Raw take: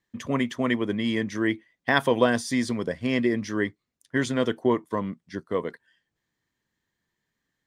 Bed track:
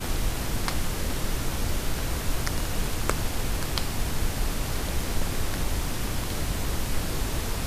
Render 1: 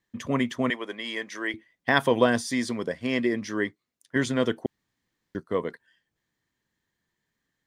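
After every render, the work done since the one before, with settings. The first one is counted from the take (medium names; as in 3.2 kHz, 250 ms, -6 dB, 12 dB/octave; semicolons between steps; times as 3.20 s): 0.70–1.54 s: high-pass 580 Hz; 2.48–4.16 s: bass shelf 130 Hz -11 dB; 4.66–5.35 s: room tone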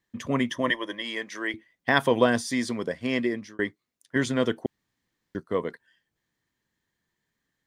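0.49–1.02 s: rippled EQ curve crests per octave 1.2, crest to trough 11 dB; 3.09–3.59 s: fade out equal-power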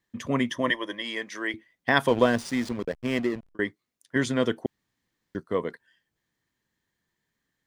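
2.08–3.55 s: hysteresis with a dead band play -30 dBFS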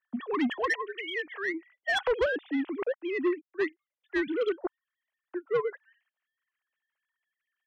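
formants replaced by sine waves; saturation -21 dBFS, distortion -10 dB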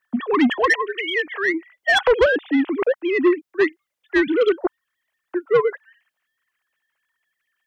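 trim +11 dB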